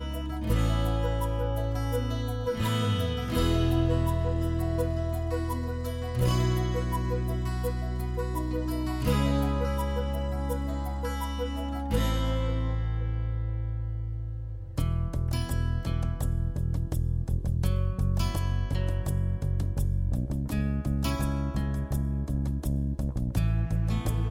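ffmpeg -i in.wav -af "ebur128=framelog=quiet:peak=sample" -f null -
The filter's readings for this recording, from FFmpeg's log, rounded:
Integrated loudness:
  I:         -29.6 LUFS
  Threshold: -39.6 LUFS
Loudness range:
  LRA:         3.1 LU
  Threshold: -49.6 LUFS
  LRA low:   -31.2 LUFS
  LRA high:  -28.1 LUFS
Sample peak:
  Peak:      -13.3 dBFS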